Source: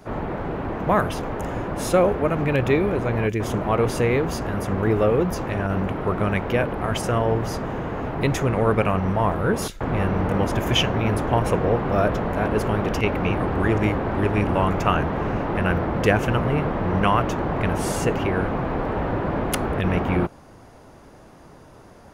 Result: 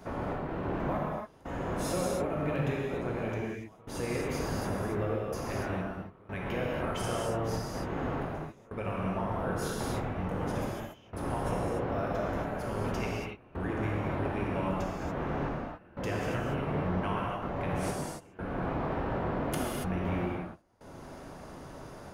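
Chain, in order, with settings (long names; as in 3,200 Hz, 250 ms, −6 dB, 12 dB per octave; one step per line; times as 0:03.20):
downward compressor 5 to 1, threshold −31 dBFS, peak gain reduction 16 dB
gate pattern "xx.xxx...xxxxxx" 93 BPM −24 dB
reverb whose tail is shaped and stops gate 310 ms flat, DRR −4 dB
level −4 dB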